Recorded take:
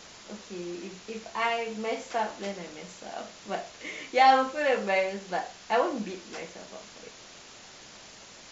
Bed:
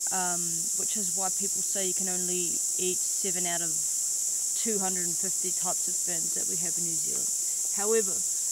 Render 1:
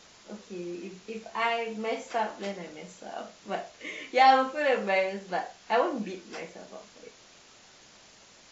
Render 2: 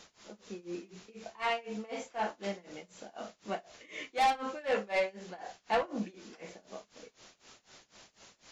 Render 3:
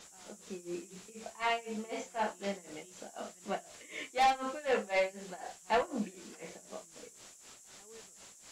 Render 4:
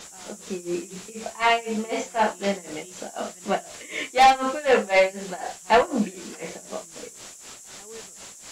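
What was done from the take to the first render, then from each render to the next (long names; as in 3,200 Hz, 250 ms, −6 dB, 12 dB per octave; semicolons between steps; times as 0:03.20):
noise reduction from a noise print 6 dB
soft clipping −21.5 dBFS, distortion −9 dB; amplitude tremolo 4 Hz, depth 93%
mix in bed −28.5 dB
level +12 dB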